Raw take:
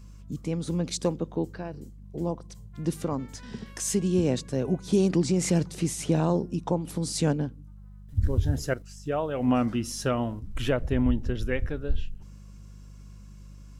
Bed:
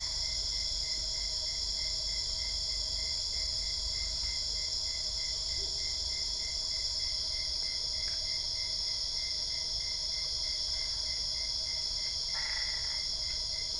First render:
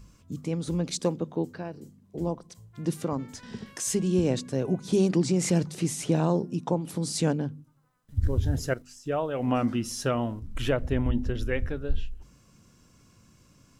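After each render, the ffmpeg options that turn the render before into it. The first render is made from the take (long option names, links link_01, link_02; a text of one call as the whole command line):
ffmpeg -i in.wav -af "bandreject=frequency=50:width_type=h:width=4,bandreject=frequency=100:width_type=h:width=4,bandreject=frequency=150:width_type=h:width=4,bandreject=frequency=200:width_type=h:width=4,bandreject=frequency=250:width_type=h:width=4" out.wav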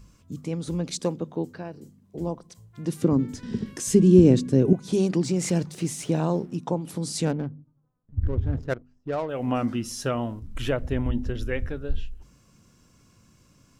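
ffmpeg -i in.wav -filter_complex "[0:a]asettb=1/sr,asplit=3[link_01][link_02][link_03];[link_01]atrim=end=3.024[link_04];[link_02]atrim=start=3.02:end=4.73,asetpts=PTS-STARTPTS,afade=type=in:duration=0.004:curve=qsin,afade=type=out:start_time=1.706:duration=0.004:curve=qsin,lowshelf=frequency=490:width_type=q:width=1.5:gain=9[link_05];[link_03]atrim=start=4.726[link_06];[link_04][link_05]acrossfade=duration=0.004:curve1=hsin:curve2=qsin[link_07];[link_07][link_06]acrossfade=duration=0.004:curve1=qsin:curve2=hsin,asettb=1/sr,asplit=3[link_08][link_09][link_10];[link_08]atrim=end=5.244[link_11];[link_09]atrim=start=5.24:end=6.58,asetpts=PTS-STARTPTS,afade=type=in:duration=0.004:curve=qsin,afade=type=out:start_time=1.336:duration=0.004:curve=qsin,aeval=exprs='sgn(val(0))*max(abs(val(0))-0.00168,0)':channel_layout=same[link_12];[link_10]atrim=start=6.576[link_13];[link_11][link_12]acrossfade=duration=0.004:curve1=hsin:curve2=qsin[link_14];[link_14][link_13]acrossfade=duration=0.004:curve1=qsin:curve2=hsin,asettb=1/sr,asplit=3[link_15][link_16][link_17];[link_15]atrim=end=7.254[link_18];[link_16]atrim=start=7.25:end=9.29,asetpts=PTS-STARTPTS,afade=type=in:duration=0.004:curve=qsin,afade=type=out:start_time=2.036:duration=0.004:curve=qsin,adynamicsmooth=sensitivity=5:basefreq=640[link_19];[link_17]atrim=start=9.286[link_20];[link_18][link_19]acrossfade=duration=0.004:curve1=hsin:curve2=qsin[link_21];[link_21][link_20]acrossfade=duration=0.004:curve1=qsin:curve2=hsin" out.wav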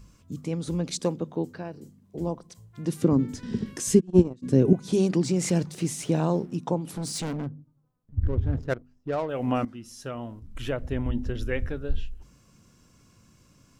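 ffmpeg -i in.wav -filter_complex "[0:a]asplit=3[link_01][link_02][link_03];[link_01]afade=type=out:start_time=3.99:duration=0.02[link_04];[link_02]agate=range=-31dB:threshold=-12dB:ratio=16:release=100:detection=peak,afade=type=in:start_time=3.99:duration=0.02,afade=type=out:start_time=4.42:duration=0.02[link_05];[link_03]afade=type=in:start_time=4.42:duration=0.02[link_06];[link_04][link_05][link_06]amix=inputs=3:normalize=0,asettb=1/sr,asplit=3[link_07][link_08][link_09];[link_07]atrim=end=6.884[link_10];[link_08]atrim=start=6.88:end=7.47,asetpts=PTS-STARTPTS,afade=type=in:duration=0.004:curve=qsin,afade=type=out:start_time=0.586:duration=0.004:curve=qsin,asoftclip=type=hard:threshold=-28dB[link_11];[link_09]atrim=start=7.466[link_12];[link_10][link_11]acrossfade=duration=0.004:curve1=hsin:curve2=qsin[link_13];[link_13][link_12]acrossfade=duration=0.004:curve1=qsin:curve2=hsin,asplit=2[link_14][link_15];[link_14]atrim=end=9.65,asetpts=PTS-STARTPTS,afade=type=out:start_time=9.646:duration=0.004:curve=hsin:silence=0.177828[link_16];[link_15]atrim=start=9.65,asetpts=PTS-STARTPTS,afade=type=in:duration=1.92:silence=0.177828[link_17];[link_16][link_17]concat=n=2:v=0:a=1" out.wav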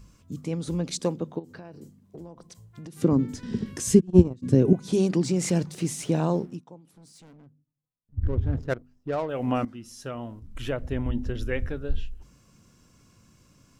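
ffmpeg -i in.wav -filter_complex "[0:a]asplit=3[link_01][link_02][link_03];[link_01]afade=type=out:start_time=1.38:duration=0.02[link_04];[link_02]acompressor=threshold=-37dB:ratio=16:attack=3.2:release=140:knee=1:detection=peak,afade=type=in:start_time=1.38:duration=0.02,afade=type=out:start_time=2.96:duration=0.02[link_05];[link_03]afade=type=in:start_time=2.96:duration=0.02[link_06];[link_04][link_05][link_06]amix=inputs=3:normalize=0,asettb=1/sr,asplit=3[link_07][link_08][link_09];[link_07]atrim=end=3.704[link_10];[link_08]atrim=start=3.7:end=4.55,asetpts=PTS-STARTPTS,afade=type=in:duration=0.004:curve=qsin,afade=type=out:start_time=0.846:duration=0.004:curve=qsin,equalizer=frequency=83:width_type=o:width=1.5:gain=9.5[link_11];[link_09]atrim=start=4.546[link_12];[link_10][link_11]acrossfade=duration=0.004:curve1=hsin:curve2=qsin[link_13];[link_13][link_12]acrossfade=duration=0.004:curve1=qsin:curve2=hsin,asplit=3[link_14][link_15][link_16];[link_14]atrim=end=6.64,asetpts=PTS-STARTPTS,afade=type=out:start_time=6.44:duration=0.2:silence=0.0944061[link_17];[link_15]atrim=start=6.64:end=8.06,asetpts=PTS-STARTPTS,volume=-20.5dB[link_18];[link_16]atrim=start=8.06,asetpts=PTS-STARTPTS,afade=type=in:duration=0.2:silence=0.0944061[link_19];[link_17][link_18][link_19]concat=n=3:v=0:a=1" out.wav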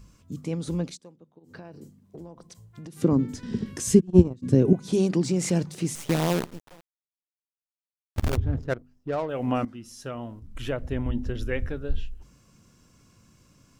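ffmpeg -i in.wav -filter_complex "[0:a]asettb=1/sr,asplit=3[link_01][link_02][link_03];[link_01]atrim=end=5.954[link_04];[link_02]atrim=start=5.95:end=8.37,asetpts=PTS-STARTPTS,afade=type=in:duration=0.004:curve=qsin,afade=type=out:start_time=2.416:duration=0.004:curve=qsin,acrusher=bits=5:dc=4:mix=0:aa=0.000001[link_05];[link_03]atrim=start=8.366[link_06];[link_04][link_05]acrossfade=duration=0.004:curve1=hsin:curve2=qsin[link_07];[link_07][link_06]acrossfade=duration=0.004:curve1=qsin:curve2=hsin,asplit=3[link_08][link_09][link_10];[link_08]atrim=end=0.98,asetpts=PTS-STARTPTS,afade=type=out:start_time=0.84:duration=0.14:silence=0.0749894[link_11];[link_09]atrim=start=0.98:end=1.4,asetpts=PTS-STARTPTS,volume=-22.5dB[link_12];[link_10]atrim=start=1.4,asetpts=PTS-STARTPTS,afade=type=in:duration=0.14:silence=0.0749894[link_13];[link_11][link_12][link_13]concat=n=3:v=0:a=1" out.wav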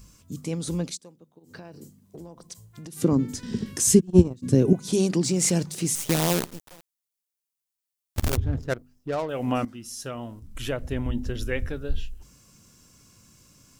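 ffmpeg -i in.wav -af "highshelf=frequency=4500:gain=12" out.wav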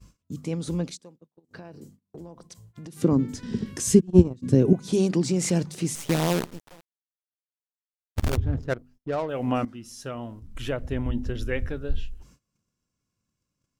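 ffmpeg -i in.wav -af "agate=range=-24dB:threshold=-51dB:ratio=16:detection=peak,aemphasis=mode=reproduction:type=cd" out.wav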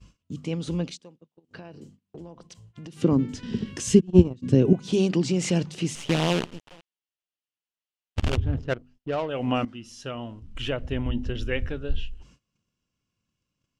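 ffmpeg -i in.wav -af "lowpass=6600,equalizer=frequency=2900:width=3.4:gain=9" out.wav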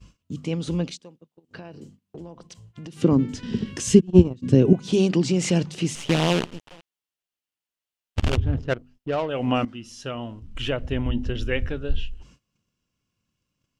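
ffmpeg -i in.wav -af "volume=2.5dB,alimiter=limit=-1dB:level=0:latency=1" out.wav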